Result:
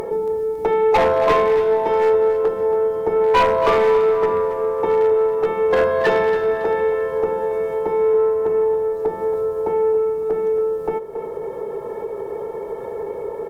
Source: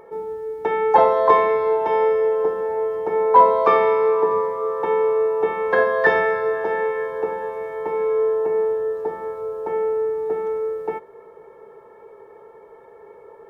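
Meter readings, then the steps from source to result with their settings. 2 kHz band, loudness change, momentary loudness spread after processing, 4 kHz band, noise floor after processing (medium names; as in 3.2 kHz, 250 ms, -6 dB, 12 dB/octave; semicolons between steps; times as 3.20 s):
-2.0 dB, +1.0 dB, 13 LU, no reading, -30 dBFS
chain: peaking EQ 1.6 kHz -10.5 dB 1.9 oct; upward compressor, threshold -23 dBFS; valve stage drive 16 dB, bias 0.25; wavefolder -17.5 dBFS; on a send: feedback delay 277 ms, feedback 36%, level -11.5 dB; on the sum: trim +7.5 dB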